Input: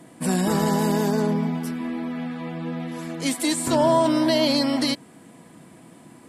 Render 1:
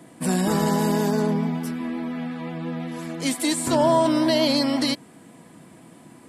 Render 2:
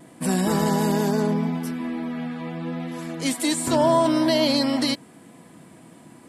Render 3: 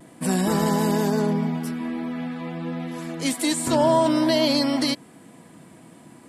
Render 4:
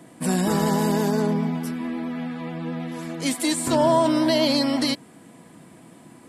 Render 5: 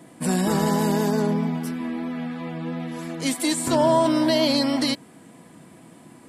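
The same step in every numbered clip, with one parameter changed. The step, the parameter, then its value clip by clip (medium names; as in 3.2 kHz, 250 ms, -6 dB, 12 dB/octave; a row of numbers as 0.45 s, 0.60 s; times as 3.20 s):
vibrato, rate: 5.7 Hz, 0.8 Hz, 0.47 Hz, 9.3 Hz, 3 Hz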